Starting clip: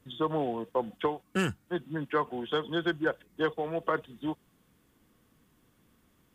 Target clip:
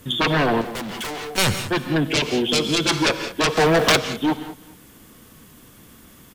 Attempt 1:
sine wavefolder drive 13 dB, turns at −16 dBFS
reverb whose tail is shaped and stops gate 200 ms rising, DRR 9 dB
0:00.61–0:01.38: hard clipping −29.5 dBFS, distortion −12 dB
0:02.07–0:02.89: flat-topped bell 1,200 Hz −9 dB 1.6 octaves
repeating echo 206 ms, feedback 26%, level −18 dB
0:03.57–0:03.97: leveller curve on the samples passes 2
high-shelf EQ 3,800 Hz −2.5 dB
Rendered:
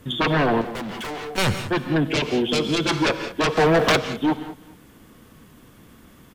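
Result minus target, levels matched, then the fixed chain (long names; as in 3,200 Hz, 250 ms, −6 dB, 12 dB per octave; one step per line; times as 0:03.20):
8,000 Hz band −6.0 dB
sine wavefolder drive 13 dB, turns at −16 dBFS
reverb whose tail is shaped and stops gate 200 ms rising, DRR 9 dB
0:00.61–0:01.38: hard clipping −29.5 dBFS, distortion −12 dB
0:02.07–0:02.89: flat-topped bell 1,200 Hz −9 dB 1.6 octaves
repeating echo 206 ms, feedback 26%, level −18 dB
0:03.57–0:03.97: leveller curve on the samples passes 2
high-shelf EQ 3,800 Hz +7 dB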